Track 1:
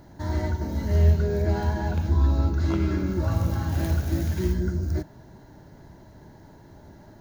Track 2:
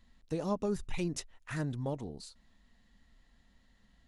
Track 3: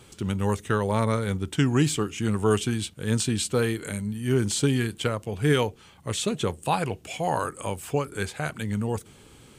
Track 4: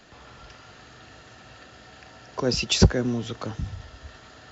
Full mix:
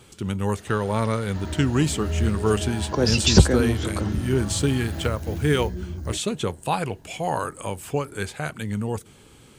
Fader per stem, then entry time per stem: −6.0, −9.0, +0.5, +2.5 decibels; 1.15, 1.30, 0.00, 0.55 seconds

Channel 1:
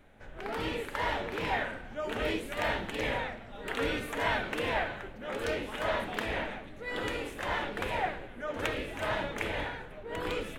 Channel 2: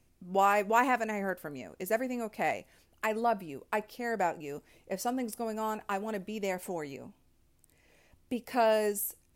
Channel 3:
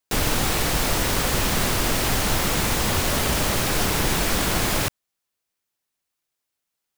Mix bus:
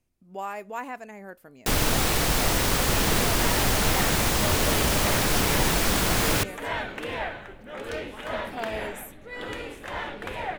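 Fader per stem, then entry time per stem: −0.5, −8.5, −1.0 decibels; 2.45, 0.00, 1.55 seconds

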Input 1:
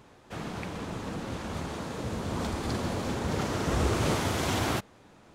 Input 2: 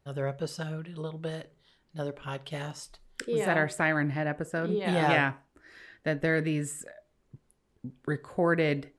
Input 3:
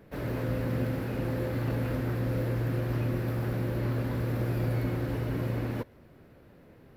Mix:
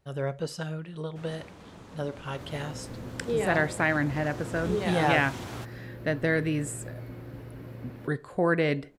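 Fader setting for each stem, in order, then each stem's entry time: −11.5, +1.0, −11.5 decibels; 0.85, 0.00, 2.25 seconds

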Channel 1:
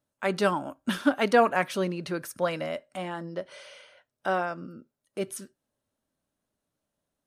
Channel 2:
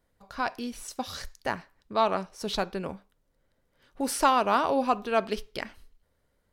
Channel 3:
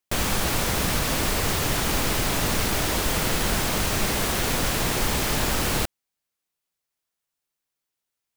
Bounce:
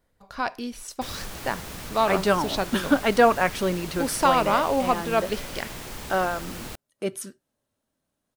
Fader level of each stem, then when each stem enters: +3.0, +2.0, −13.5 decibels; 1.85, 0.00, 0.90 seconds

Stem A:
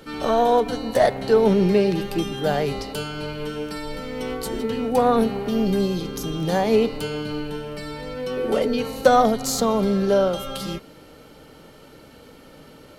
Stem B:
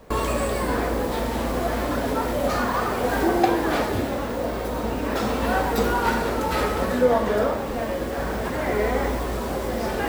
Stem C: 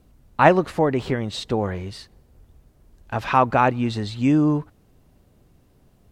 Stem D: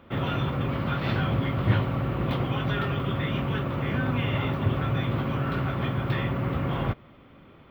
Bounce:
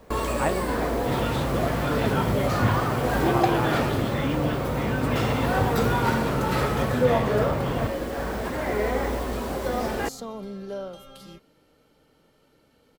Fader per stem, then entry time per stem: −15.5, −2.5, −12.5, −1.0 decibels; 0.60, 0.00, 0.00, 0.95 seconds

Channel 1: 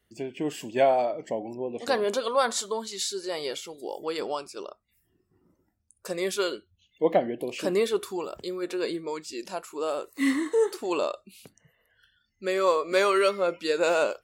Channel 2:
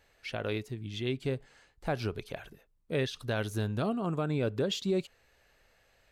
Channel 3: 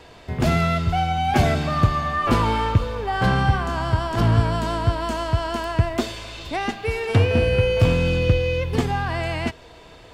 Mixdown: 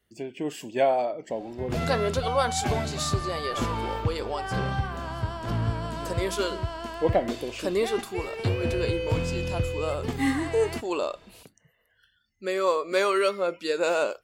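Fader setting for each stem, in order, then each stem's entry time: −1.0, −14.5, −9.5 decibels; 0.00, 1.65, 1.30 seconds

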